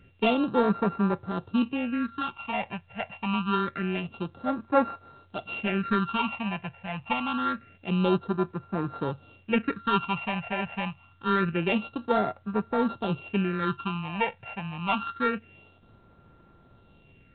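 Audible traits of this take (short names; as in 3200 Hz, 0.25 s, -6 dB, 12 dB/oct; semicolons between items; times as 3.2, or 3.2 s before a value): a buzz of ramps at a fixed pitch in blocks of 32 samples; phasing stages 6, 0.26 Hz, lowest notch 330–3000 Hz; A-law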